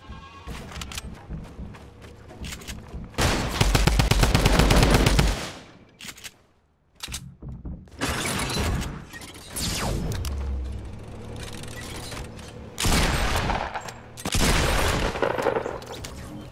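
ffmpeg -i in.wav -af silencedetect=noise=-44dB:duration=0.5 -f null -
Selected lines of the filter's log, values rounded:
silence_start: 6.32
silence_end: 7.00 | silence_duration: 0.68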